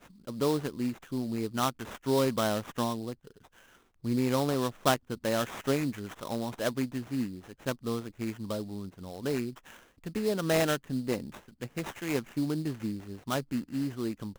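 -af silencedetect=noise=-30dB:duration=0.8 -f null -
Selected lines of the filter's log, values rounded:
silence_start: 3.12
silence_end: 4.05 | silence_duration: 0.93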